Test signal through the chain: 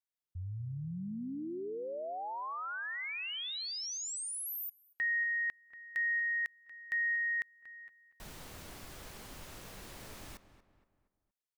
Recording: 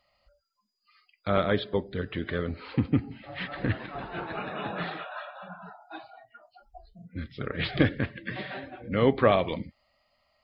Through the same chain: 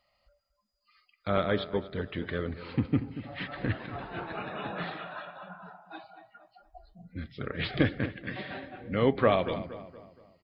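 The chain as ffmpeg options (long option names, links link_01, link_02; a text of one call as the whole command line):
ffmpeg -i in.wav -filter_complex "[0:a]asplit=2[link_01][link_02];[link_02]adelay=235,lowpass=frequency=2400:poles=1,volume=-13dB,asplit=2[link_03][link_04];[link_04]adelay=235,lowpass=frequency=2400:poles=1,volume=0.44,asplit=2[link_05][link_06];[link_06]adelay=235,lowpass=frequency=2400:poles=1,volume=0.44,asplit=2[link_07][link_08];[link_08]adelay=235,lowpass=frequency=2400:poles=1,volume=0.44[link_09];[link_01][link_03][link_05][link_07][link_09]amix=inputs=5:normalize=0,volume=-2.5dB" out.wav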